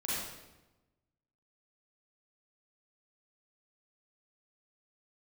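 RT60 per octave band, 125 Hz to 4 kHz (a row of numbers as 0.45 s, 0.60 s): 1.4 s, 1.3 s, 1.1 s, 1.0 s, 0.90 s, 0.80 s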